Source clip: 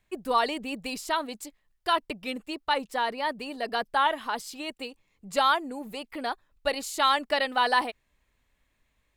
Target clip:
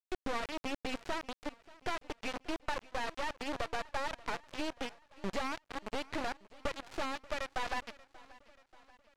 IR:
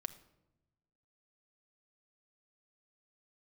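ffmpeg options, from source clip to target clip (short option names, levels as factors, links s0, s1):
-af "aemphasis=mode=reproduction:type=50fm,acompressor=threshold=0.0126:ratio=12,acrusher=bits=4:dc=4:mix=0:aa=0.000001,adynamicsmooth=sensitivity=5.5:basefreq=3900,aecho=1:1:584|1168|1752|2336:0.0891|0.0508|0.029|0.0165,volume=2.51"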